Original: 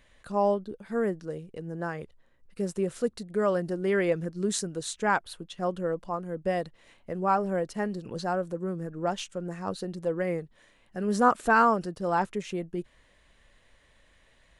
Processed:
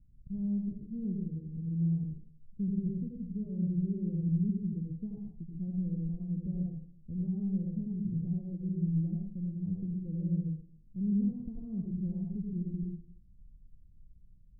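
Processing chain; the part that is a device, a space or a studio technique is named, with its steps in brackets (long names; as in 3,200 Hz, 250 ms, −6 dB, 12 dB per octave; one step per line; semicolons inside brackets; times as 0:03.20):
club heard from the street (brickwall limiter −21 dBFS, peak gain reduction 10.5 dB; low-pass filter 190 Hz 24 dB per octave; convolution reverb RT60 0.50 s, pre-delay 77 ms, DRR −1.5 dB)
level +3.5 dB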